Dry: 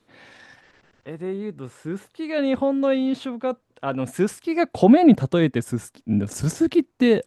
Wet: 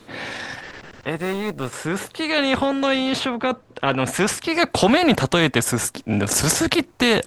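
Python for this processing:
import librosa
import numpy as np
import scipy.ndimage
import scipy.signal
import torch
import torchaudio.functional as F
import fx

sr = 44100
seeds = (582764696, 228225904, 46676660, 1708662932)

y = fx.law_mismatch(x, sr, coded='A', at=(1.17, 1.73))
y = fx.high_shelf(y, sr, hz=fx.line((3.19, 5500.0), (4.53, 9500.0)), db=-11.5, at=(3.19, 4.53), fade=0.02)
y = fx.spectral_comp(y, sr, ratio=2.0)
y = y * 10.0 ** (2.0 / 20.0)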